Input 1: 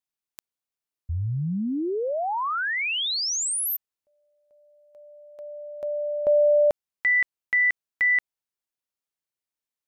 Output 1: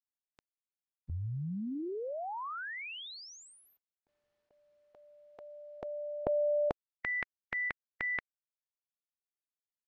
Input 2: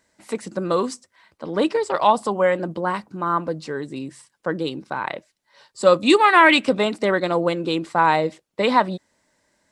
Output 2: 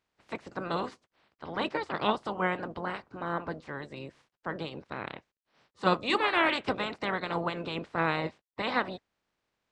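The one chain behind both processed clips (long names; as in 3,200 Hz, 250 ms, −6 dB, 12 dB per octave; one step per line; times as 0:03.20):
ceiling on every frequency bin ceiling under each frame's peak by 23 dB
bit reduction 11 bits
head-to-tape spacing loss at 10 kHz 26 dB
level −8 dB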